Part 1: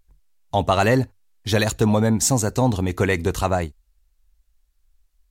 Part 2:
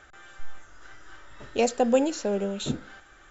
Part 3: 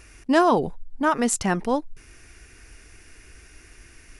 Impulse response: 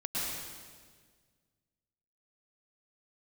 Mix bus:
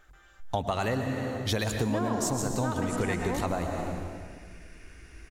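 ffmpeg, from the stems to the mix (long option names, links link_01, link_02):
-filter_complex "[0:a]volume=-3dB,asplit=2[link_01][link_02];[link_02]volume=-10dB[link_03];[1:a]asoftclip=type=tanh:threshold=-26dB,volume=-9.5dB[link_04];[2:a]highshelf=frequency=5300:gain=-11,adelay=1600,volume=-6dB,asplit=2[link_05][link_06];[link_06]volume=-4dB[link_07];[3:a]atrim=start_sample=2205[link_08];[link_03][link_07]amix=inputs=2:normalize=0[link_09];[link_09][link_08]afir=irnorm=-1:irlink=0[link_10];[link_01][link_04][link_05][link_10]amix=inputs=4:normalize=0,acompressor=threshold=-26dB:ratio=6"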